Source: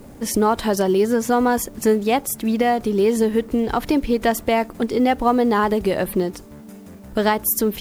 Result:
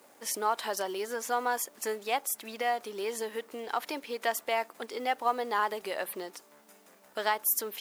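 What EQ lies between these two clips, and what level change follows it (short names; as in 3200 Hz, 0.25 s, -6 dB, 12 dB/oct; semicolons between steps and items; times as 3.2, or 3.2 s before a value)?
HPF 720 Hz 12 dB/oct; -7.0 dB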